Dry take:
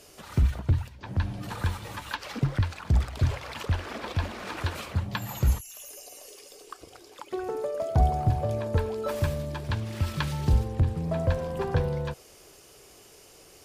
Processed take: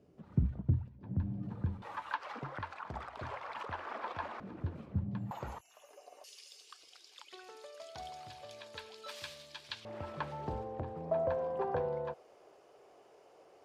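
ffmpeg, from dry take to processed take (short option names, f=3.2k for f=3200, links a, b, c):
-af "asetnsamples=n=441:p=0,asendcmd='1.82 bandpass f 1000;4.4 bandpass f 180;5.31 bandpass f 860;6.24 bandpass f 3900;9.85 bandpass f 690',bandpass=f=180:t=q:w=1.5:csg=0"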